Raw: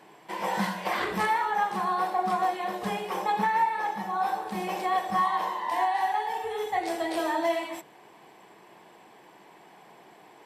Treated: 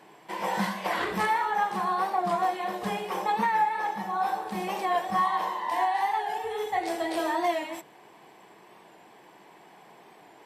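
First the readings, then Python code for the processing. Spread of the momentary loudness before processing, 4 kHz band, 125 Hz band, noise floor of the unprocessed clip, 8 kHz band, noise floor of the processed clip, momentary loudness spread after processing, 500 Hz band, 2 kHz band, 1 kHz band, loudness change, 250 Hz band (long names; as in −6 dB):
6 LU, 0.0 dB, can't be measured, −54 dBFS, 0.0 dB, −54 dBFS, 6 LU, 0.0 dB, 0.0 dB, 0.0 dB, 0.0 dB, 0.0 dB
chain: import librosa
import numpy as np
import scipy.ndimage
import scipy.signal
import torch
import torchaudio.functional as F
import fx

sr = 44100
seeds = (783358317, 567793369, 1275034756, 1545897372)

y = fx.record_warp(x, sr, rpm=45.0, depth_cents=100.0)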